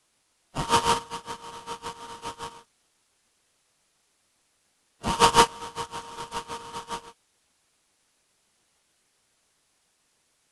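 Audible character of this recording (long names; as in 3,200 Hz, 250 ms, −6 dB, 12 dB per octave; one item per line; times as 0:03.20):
aliases and images of a low sample rate 2,100 Hz, jitter 20%
tremolo triangle 7.1 Hz, depth 85%
a quantiser's noise floor 12 bits, dither triangular
AAC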